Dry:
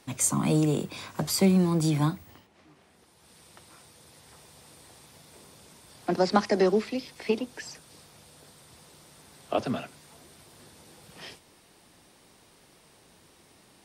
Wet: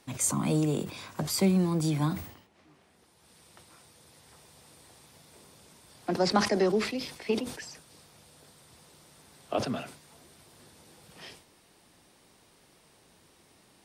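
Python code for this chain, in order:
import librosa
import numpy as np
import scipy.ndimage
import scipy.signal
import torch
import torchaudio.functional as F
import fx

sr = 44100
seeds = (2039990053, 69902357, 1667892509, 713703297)

y = fx.sustainer(x, sr, db_per_s=99.0)
y = y * librosa.db_to_amplitude(-3.0)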